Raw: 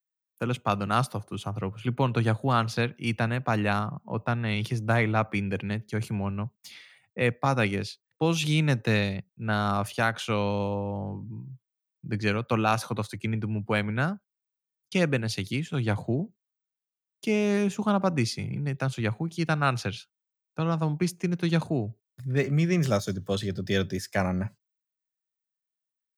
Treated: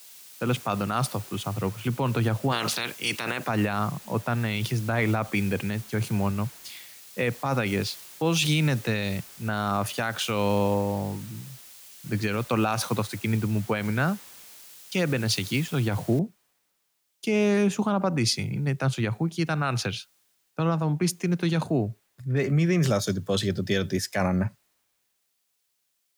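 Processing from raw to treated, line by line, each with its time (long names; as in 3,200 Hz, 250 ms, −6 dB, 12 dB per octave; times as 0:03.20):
0:02.51–0:03.47: ceiling on every frequency bin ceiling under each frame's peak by 21 dB
0:16.19: noise floor change −50 dB −69 dB
whole clip: brickwall limiter −20 dBFS; low-shelf EQ 78 Hz −6 dB; multiband upward and downward expander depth 40%; level +5.5 dB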